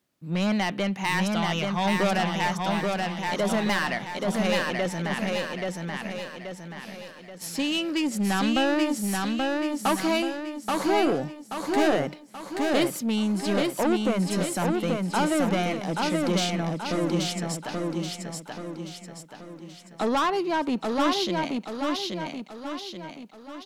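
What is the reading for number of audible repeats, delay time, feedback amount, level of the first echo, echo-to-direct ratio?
5, 0.83 s, 47%, -3.0 dB, -2.0 dB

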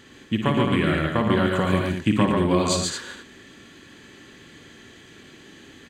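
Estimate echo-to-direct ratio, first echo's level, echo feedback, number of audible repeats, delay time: 0.0 dB, -7.5 dB, no steady repeat, 3, 56 ms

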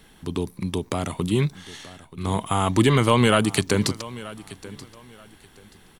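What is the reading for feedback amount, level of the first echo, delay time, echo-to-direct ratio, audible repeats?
25%, -18.0 dB, 0.93 s, -17.5 dB, 2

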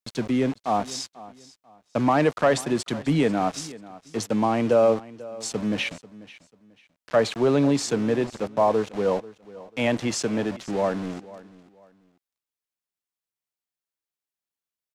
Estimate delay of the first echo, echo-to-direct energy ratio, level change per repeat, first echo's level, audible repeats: 0.491 s, -18.5 dB, -11.0 dB, -19.0 dB, 2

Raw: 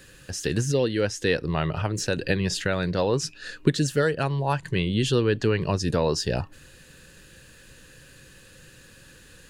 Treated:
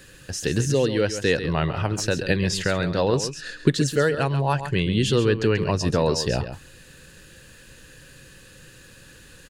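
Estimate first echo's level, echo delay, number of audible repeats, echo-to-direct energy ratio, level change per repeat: -10.5 dB, 0.136 s, 1, -10.5 dB, no steady repeat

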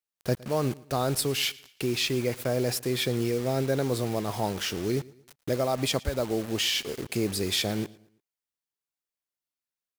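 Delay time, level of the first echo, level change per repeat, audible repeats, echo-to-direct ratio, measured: 0.113 s, -22.0 dB, -8.0 dB, 2, -21.5 dB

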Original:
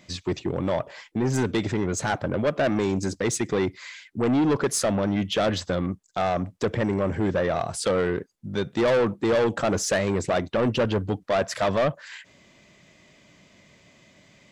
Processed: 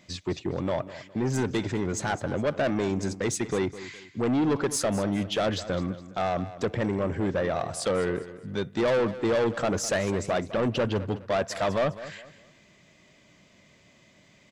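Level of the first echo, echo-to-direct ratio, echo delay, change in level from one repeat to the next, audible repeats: -15.0 dB, -14.5 dB, 0.206 s, -9.5 dB, 3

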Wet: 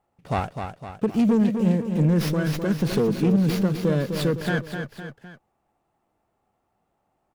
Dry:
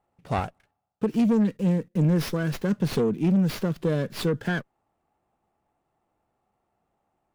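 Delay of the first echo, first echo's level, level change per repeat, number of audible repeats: 0.255 s, -7.0 dB, -6.0 dB, 3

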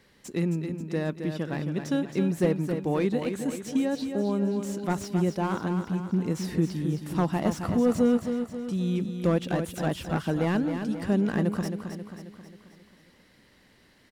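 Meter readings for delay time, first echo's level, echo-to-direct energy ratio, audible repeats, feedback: 0.268 s, -7.5 dB, -6.0 dB, 5, 52%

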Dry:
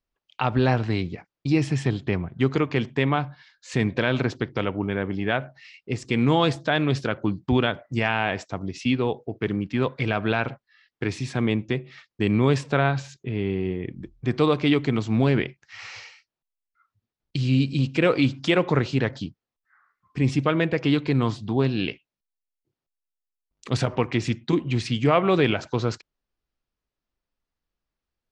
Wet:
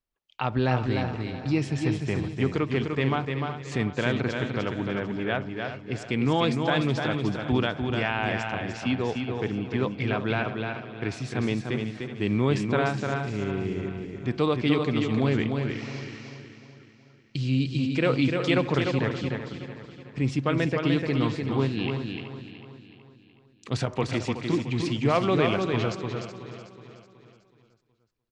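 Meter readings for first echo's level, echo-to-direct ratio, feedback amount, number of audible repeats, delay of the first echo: -5.0 dB, -3.5 dB, no steady repeat, 11, 0.299 s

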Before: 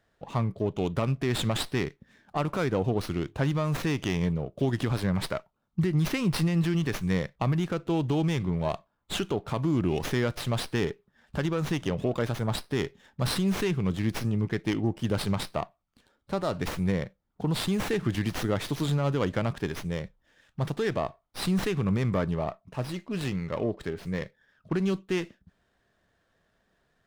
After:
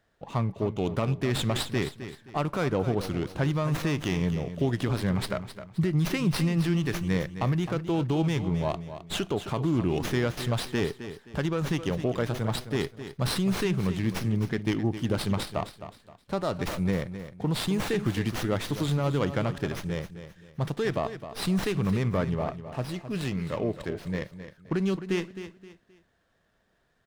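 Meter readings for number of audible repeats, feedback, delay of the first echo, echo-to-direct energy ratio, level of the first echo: 3, 32%, 0.262 s, -11.0 dB, -11.5 dB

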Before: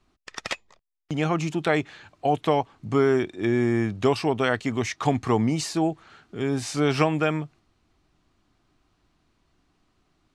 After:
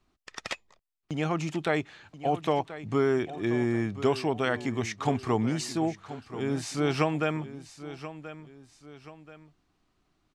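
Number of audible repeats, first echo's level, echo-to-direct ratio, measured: 2, -14.0 dB, -13.5 dB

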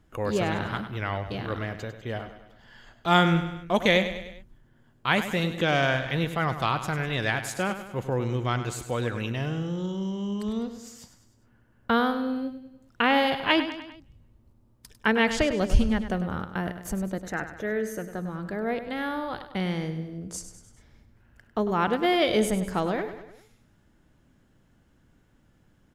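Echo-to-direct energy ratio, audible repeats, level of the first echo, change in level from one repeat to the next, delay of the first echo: -9.5 dB, 4, -11.0 dB, -5.5 dB, 0.1 s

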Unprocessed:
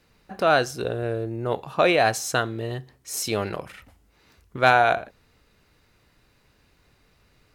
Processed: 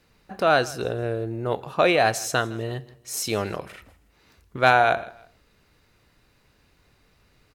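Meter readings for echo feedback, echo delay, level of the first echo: 32%, 0.16 s, -21.0 dB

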